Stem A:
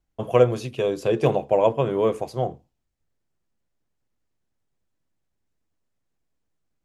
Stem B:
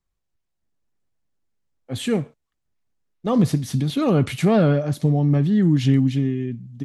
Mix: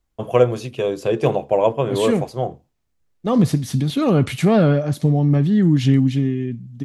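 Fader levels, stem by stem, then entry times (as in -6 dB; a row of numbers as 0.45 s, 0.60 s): +2.0 dB, +2.0 dB; 0.00 s, 0.00 s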